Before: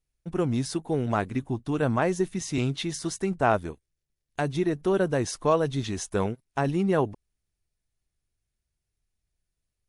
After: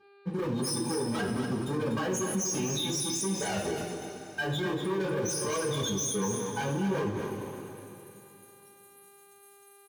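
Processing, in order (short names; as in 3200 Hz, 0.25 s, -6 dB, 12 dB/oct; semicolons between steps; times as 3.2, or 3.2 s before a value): HPF 100 Hz 12 dB/oct; pre-emphasis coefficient 0.9; loudest bins only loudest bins 8; reverse; upward compressor, threshold -50 dBFS; reverse; sample leveller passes 5; buzz 400 Hz, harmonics 12, -67 dBFS -7 dB/oct; notch comb 680 Hz; two-slope reverb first 0.3 s, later 2.9 s, from -18 dB, DRR -7.5 dB; limiter -25 dBFS, peak gain reduction 11 dB; on a send: echo 0.244 s -7 dB; on the sum: gain +1.5 dB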